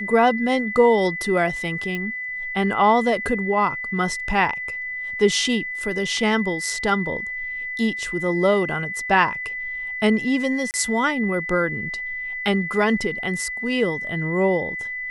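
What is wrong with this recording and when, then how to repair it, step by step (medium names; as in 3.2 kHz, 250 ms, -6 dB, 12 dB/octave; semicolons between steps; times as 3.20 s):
whine 2 kHz -27 dBFS
1.95 s: pop -16 dBFS
10.71–10.74 s: dropout 29 ms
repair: de-click; band-stop 2 kHz, Q 30; interpolate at 10.71 s, 29 ms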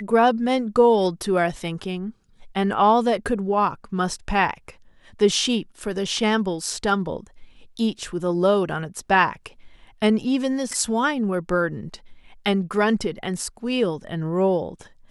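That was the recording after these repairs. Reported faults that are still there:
nothing left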